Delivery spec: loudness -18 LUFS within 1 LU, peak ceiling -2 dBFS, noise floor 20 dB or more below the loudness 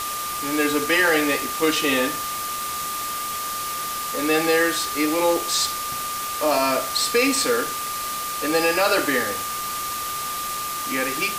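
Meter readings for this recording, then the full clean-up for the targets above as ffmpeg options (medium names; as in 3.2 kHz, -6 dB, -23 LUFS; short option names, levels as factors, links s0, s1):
steady tone 1.2 kHz; tone level -28 dBFS; noise floor -28 dBFS; noise floor target -42 dBFS; loudness -22.0 LUFS; peak level -7.0 dBFS; loudness target -18.0 LUFS
-> -af "bandreject=f=1200:w=30"
-af "afftdn=nr=14:nf=-28"
-af "volume=1.58"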